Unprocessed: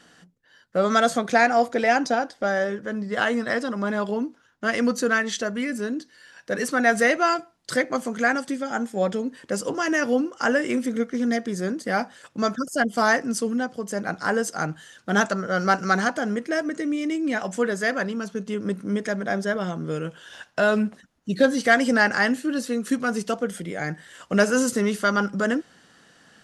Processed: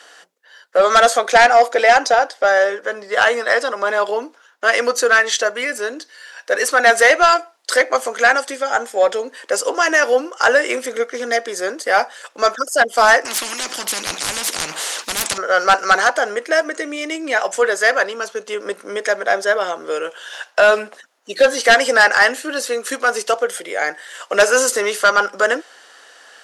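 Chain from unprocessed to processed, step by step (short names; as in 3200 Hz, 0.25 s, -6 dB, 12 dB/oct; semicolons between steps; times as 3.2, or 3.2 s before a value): HPF 460 Hz 24 dB/oct; sine folder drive 7 dB, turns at -4.5 dBFS; 13.25–15.38 spectral compressor 10:1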